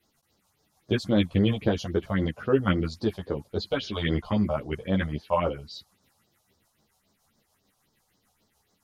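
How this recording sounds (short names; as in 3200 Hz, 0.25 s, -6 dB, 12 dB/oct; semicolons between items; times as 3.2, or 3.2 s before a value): phasing stages 4, 3.7 Hz, lowest notch 290–2600 Hz; tremolo triangle 6.8 Hz, depth 40%; a shimmering, thickened sound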